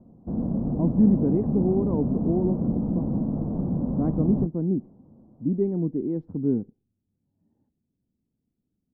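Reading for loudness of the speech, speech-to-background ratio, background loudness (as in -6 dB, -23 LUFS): -26.0 LUFS, 1.5 dB, -27.5 LUFS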